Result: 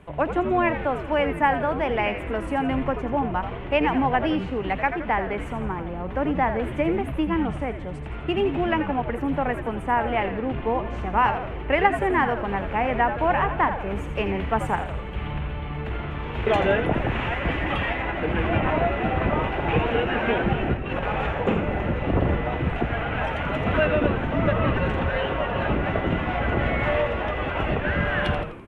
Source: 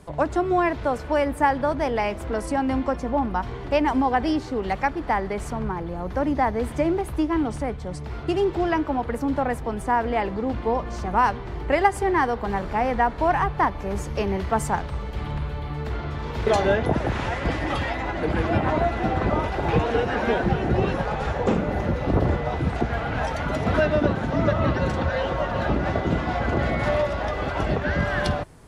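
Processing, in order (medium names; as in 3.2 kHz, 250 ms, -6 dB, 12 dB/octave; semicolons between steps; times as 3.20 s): 20.74–21.27 s: compressor with a negative ratio -26 dBFS, ratio -0.5; resonant high shelf 3.7 kHz -10 dB, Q 3; frequency-shifting echo 84 ms, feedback 51%, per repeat -120 Hz, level -9 dB; trim -1.5 dB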